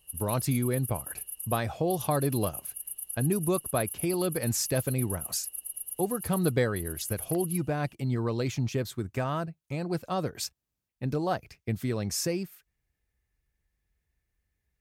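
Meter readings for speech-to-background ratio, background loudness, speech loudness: 5.5 dB, -36.5 LUFS, -31.0 LUFS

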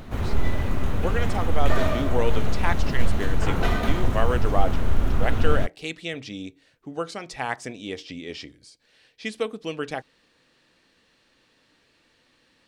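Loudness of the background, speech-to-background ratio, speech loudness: -27.0 LUFS, -4.0 dB, -31.0 LUFS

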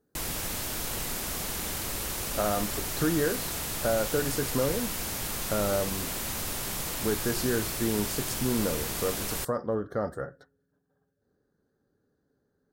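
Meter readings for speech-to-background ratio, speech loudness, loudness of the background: 0.0 dB, -31.5 LUFS, -31.5 LUFS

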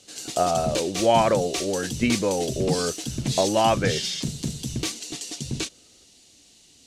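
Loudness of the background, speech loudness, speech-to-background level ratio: -29.5 LUFS, -24.5 LUFS, 5.0 dB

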